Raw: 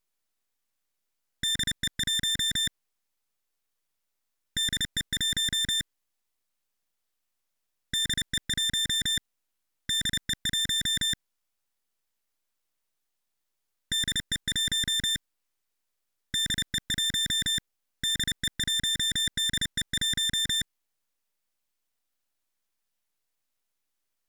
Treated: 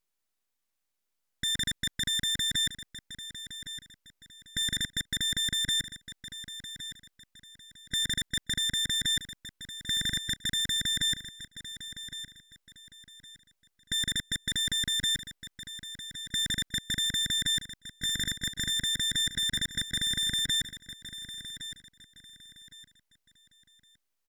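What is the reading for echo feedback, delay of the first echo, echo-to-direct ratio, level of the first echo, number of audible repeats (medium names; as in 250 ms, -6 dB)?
30%, 1113 ms, -12.0 dB, -12.5 dB, 3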